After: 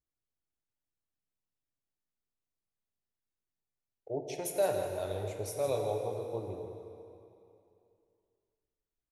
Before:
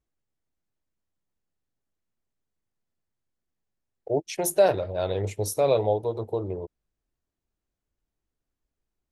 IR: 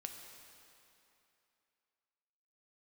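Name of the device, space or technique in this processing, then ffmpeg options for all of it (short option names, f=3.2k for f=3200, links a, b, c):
cave: -filter_complex "[0:a]aecho=1:1:163:0.335[a];[1:a]atrim=start_sample=2205[b];[a][b]afir=irnorm=-1:irlink=0,volume=-6.5dB"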